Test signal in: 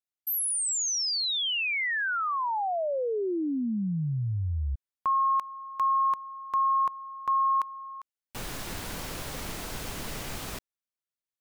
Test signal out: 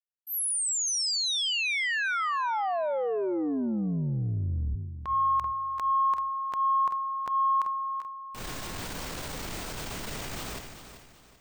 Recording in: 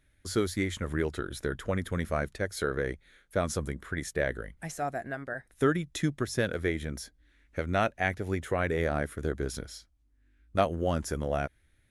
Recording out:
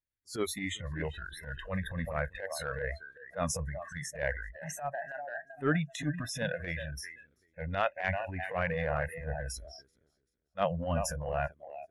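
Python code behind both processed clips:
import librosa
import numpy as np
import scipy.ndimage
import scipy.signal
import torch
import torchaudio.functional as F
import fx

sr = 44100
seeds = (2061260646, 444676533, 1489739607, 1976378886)

y = fx.echo_feedback(x, sr, ms=386, feedback_pct=36, wet_db=-11.0)
y = fx.noise_reduce_blind(y, sr, reduce_db=29)
y = fx.transient(y, sr, attack_db=-12, sustain_db=5)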